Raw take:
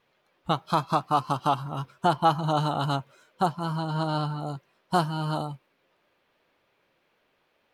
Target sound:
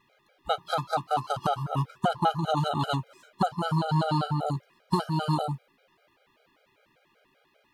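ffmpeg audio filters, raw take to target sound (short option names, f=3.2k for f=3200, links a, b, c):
-af "acompressor=threshold=-26dB:ratio=6,afftfilt=real='re*gt(sin(2*PI*5.1*pts/sr)*(1-2*mod(floor(b*sr/1024/410),2)),0)':imag='im*gt(sin(2*PI*5.1*pts/sr)*(1-2*mod(floor(b*sr/1024/410),2)),0)':win_size=1024:overlap=0.75,volume=7dB"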